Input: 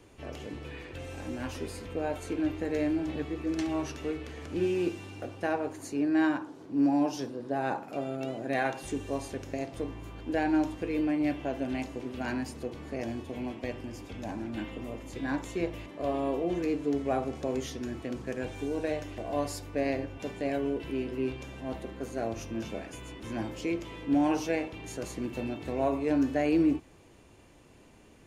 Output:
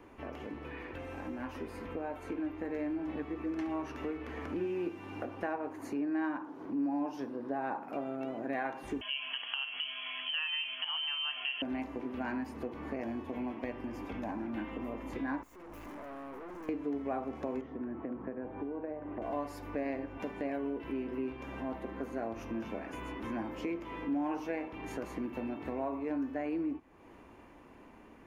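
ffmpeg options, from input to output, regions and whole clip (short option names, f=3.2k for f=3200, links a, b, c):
-filter_complex "[0:a]asettb=1/sr,asplit=3[a][b][c];[a]atrim=end=9.014[d];[b]atrim=start=9.01:end=11.62,asetpts=PTS-STARTPTS,afade=t=in:d=0.004:c=qsin,afade=t=out:st=2.606:d=0.004:c=qsin,equalizer=f=670:w=0.58:g=14,acompressor=threshold=-25dB:ratio=2:attack=3.2:release=140:knee=1:detection=peak,lowpass=f=2.9k:t=q:w=0.5098,lowpass=f=2.9k:t=q:w=0.6013,lowpass=f=2.9k:t=q:w=0.9,lowpass=f=2.9k:t=q:w=2.563,afreqshift=-3400[e];[c]atrim=start=11.616[f];[d][e]acrossfade=d=0.004:c1=hsin:c2=qsin[g];[g][f]acrossfade=d=0.004:c1=qsin:c2=hsin,asettb=1/sr,asplit=3[h][i][j];[h]atrim=end=15.434[k];[i]atrim=start=15.43:end=16.69,asetpts=PTS-STARTPTS,afade=t=in:d=0.004:c=qsin,afade=t=out:st=1.256:d=0.004:c=qsin,acompressor=threshold=-40dB:ratio=6:attack=3.2:release=140:knee=1:detection=peak,highshelf=f=4.8k:t=q:w=1.5:g=12.5,aeval=exprs='(tanh(398*val(0)+0.4)-tanh(0.4))/398':c=same[l];[j]atrim=start=16.686[m];[k][l]acrossfade=d=0.004:c1=hsin:c2=qsin[n];[n][m]acrossfade=d=0.004:c1=qsin:c2=hsin,asettb=1/sr,asplit=3[o][p][q];[o]atrim=end=17.614[r];[p]atrim=start=17.61:end=19.22,asetpts=PTS-STARTPTS,afade=t=in:d=0.004:c=qsin,afade=t=out:st=1.606:d=0.004:c=qsin,lowpass=1.5k,acrossover=split=91|1000[s][t][u];[s]acompressor=threshold=-60dB:ratio=4[v];[t]acompressor=threshold=-36dB:ratio=4[w];[u]acompressor=threshold=-59dB:ratio=4[x];[v][w][x]amix=inputs=3:normalize=0[y];[q]atrim=start=19.216[z];[r][y]acrossfade=d=0.004:c1=hsin:c2=qsin[aa];[aa][z]acrossfade=d=0.004:c1=qsin:c2=hsin,dynaudnorm=f=310:g=17:m=6.5dB,equalizer=f=125:t=o:w=1:g=-6,equalizer=f=250:t=o:w=1:g=6,equalizer=f=1k:t=o:w=1:g=8,equalizer=f=2k:t=o:w=1:g=4,equalizer=f=4k:t=o:w=1:g=-6,equalizer=f=8k:t=o:w=1:g=-12,acompressor=threshold=-39dB:ratio=2.5,volume=-1.5dB"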